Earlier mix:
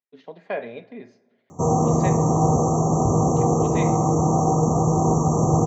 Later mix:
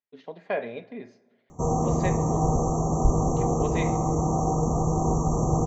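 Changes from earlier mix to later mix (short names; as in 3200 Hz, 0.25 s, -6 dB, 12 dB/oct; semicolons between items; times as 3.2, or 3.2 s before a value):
background -5.5 dB; master: remove HPF 85 Hz 24 dB/oct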